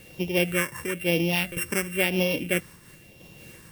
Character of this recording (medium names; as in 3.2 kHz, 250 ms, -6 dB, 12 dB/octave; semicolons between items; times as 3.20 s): a buzz of ramps at a fixed pitch in blocks of 16 samples; phasing stages 4, 1 Hz, lowest notch 640–1400 Hz; a quantiser's noise floor 10-bit, dither none; random flutter of the level